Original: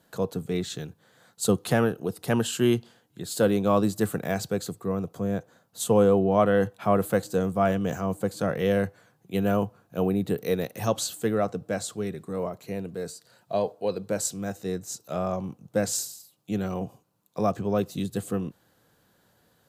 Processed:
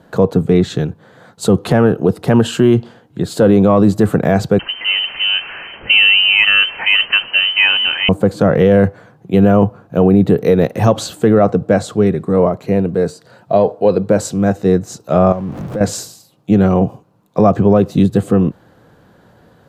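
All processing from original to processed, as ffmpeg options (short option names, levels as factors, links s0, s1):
-filter_complex "[0:a]asettb=1/sr,asplit=3[s0][s1][s2];[s0]atrim=end=4.594[s3];[s1]atrim=start=4.59:end=8.09,asetpts=PTS-STARTPTS,afade=t=in:d=0.004:c=qsin,afade=t=out:st=3.496:d=0.004:c=qsin,aeval=exprs='val(0)+0.5*0.0158*sgn(val(0))':c=same,lowpass=f=2700:t=q:w=0.5098,lowpass=f=2700:t=q:w=0.6013,lowpass=f=2700:t=q:w=0.9,lowpass=f=2700:t=q:w=2.563,afreqshift=-3200[s4];[s2]atrim=start=8.086[s5];[s3][s4]acrossfade=d=0.004:c1=hsin:c2=qsin[s6];[s6][s5]acrossfade=d=0.004:c1=qsin:c2=hsin,asettb=1/sr,asplit=3[s7][s8][s9];[s7]atrim=end=15.324[s10];[s8]atrim=start=15.32:end=15.81,asetpts=PTS-STARTPTS,afade=t=in:d=0.004:c=qsin,afade=t=out:st=0.486:d=0.004:c=qsin,aeval=exprs='val(0)+0.5*0.0119*sgn(val(0))':c=same,acompressor=threshold=0.00891:ratio=3:attack=3.2:release=140:knee=1:detection=peak[s11];[s9]atrim=start=15.806[s12];[s10][s11]acrossfade=d=0.004:c1=hsin:c2=qsin[s13];[s13][s12]acrossfade=d=0.004:c1=qsin:c2=hsin,lowpass=f=1100:p=1,acontrast=35,alimiter=level_in=5.31:limit=0.891:release=50:level=0:latency=1,volume=0.891"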